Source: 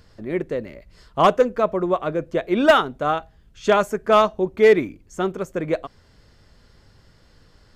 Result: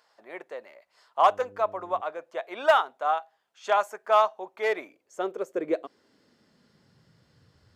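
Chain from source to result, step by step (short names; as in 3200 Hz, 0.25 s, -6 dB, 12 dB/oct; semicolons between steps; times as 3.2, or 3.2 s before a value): high-pass sweep 790 Hz -> 92 Hz, 4.58–7.72; 1.22–2 buzz 100 Hz, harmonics 5, -44 dBFS 0 dB/oct; gain -8.5 dB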